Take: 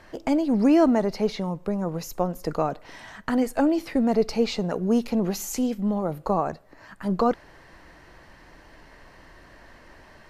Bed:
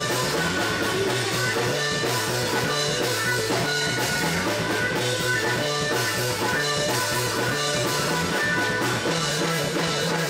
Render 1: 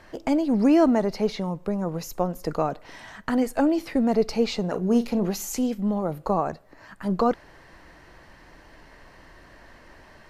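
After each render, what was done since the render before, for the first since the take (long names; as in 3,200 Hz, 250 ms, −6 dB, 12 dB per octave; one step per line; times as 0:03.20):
0:04.63–0:05.27: double-tracking delay 38 ms −12 dB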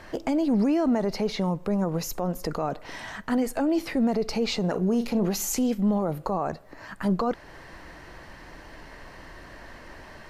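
in parallel at −2 dB: downward compressor, threshold −31 dBFS, peak gain reduction 16 dB
on the sum: brickwall limiter −17 dBFS, peak gain reduction 9 dB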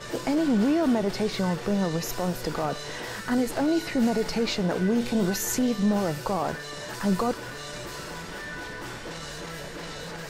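mix in bed −14 dB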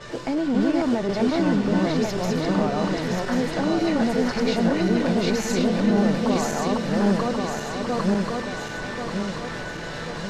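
feedback delay that plays each chunk backwards 543 ms, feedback 69%, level 0 dB
high-frequency loss of the air 70 metres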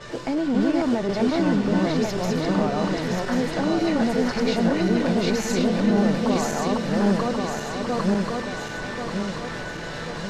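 no processing that can be heard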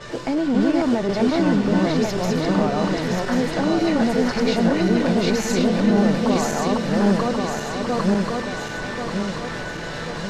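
level +2.5 dB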